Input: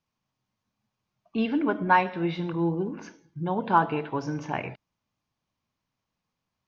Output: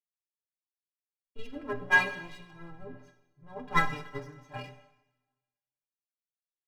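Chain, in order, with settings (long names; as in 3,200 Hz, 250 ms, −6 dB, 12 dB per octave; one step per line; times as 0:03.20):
lower of the sound and its delayed copy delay 6.6 ms
low-shelf EQ 220 Hz +4.5 dB
stiff-string resonator 120 Hz, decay 0.34 s, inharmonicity 0.03
convolution reverb RT60 2.8 s, pre-delay 38 ms, DRR 8.5 dB
multiband upward and downward expander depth 100%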